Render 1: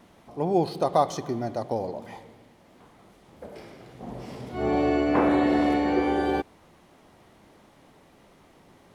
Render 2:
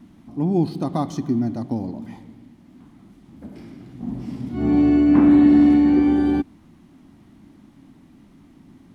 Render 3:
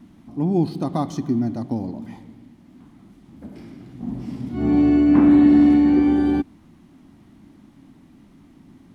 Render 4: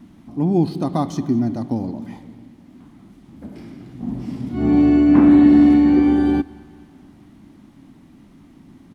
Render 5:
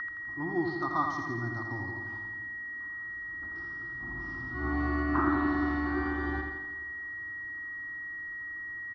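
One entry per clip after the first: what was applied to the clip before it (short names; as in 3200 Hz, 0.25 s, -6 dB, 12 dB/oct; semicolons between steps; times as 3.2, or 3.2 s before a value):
resonant low shelf 360 Hz +9.5 dB, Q 3; gain -3 dB
nothing audible
feedback echo 0.218 s, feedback 59%, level -23 dB; gain +2.5 dB
whine 1900 Hz -20 dBFS; EQ curve 100 Hz 0 dB, 220 Hz -21 dB, 340 Hz -1 dB, 490 Hz -18 dB, 1300 Hz +15 dB, 2200 Hz -13 dB, 3800 Hz -4 dB, 5600 Hz -2 dB, 8000 Hz -28 dB; feedback echo 84 ms, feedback 57%, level -5.5 dB; gain -8.5 dB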